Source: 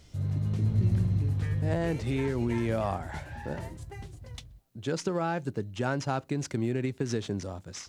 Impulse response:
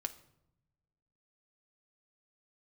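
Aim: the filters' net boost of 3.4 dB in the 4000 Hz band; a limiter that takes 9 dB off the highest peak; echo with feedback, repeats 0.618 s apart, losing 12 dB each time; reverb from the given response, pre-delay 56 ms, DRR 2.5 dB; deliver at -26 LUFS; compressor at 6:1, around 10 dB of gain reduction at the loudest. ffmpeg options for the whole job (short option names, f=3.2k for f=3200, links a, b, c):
-filter_complex "[0:a]equalizer=f=4k:t=o:g=4.5,acompressor=threshold=-32dB:ratio=6,alimiter=level_in=7dB:limit=-24dB:level=0:latency=1,volume=-7dB,aecho=1:1:618|1236|1854:0.251|0.0628|0.0157,asplit=2[a][b];[1:a]atrim=start_sample=2205,adelay=56[c];[b][c]afir=irnorm=-1:irlink=0,volume=-2dB[d];[a][d]amix=inputs=2:normalize=0,volume=13dB"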